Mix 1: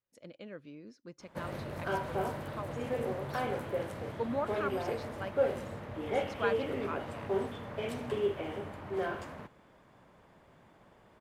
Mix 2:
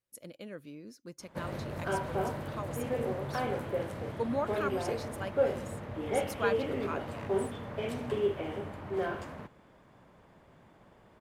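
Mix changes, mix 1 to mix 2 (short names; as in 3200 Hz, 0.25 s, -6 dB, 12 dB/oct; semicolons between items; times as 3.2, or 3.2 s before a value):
speech: remove air absorption 140 m; master: add low shelf 420 Hz +3 dB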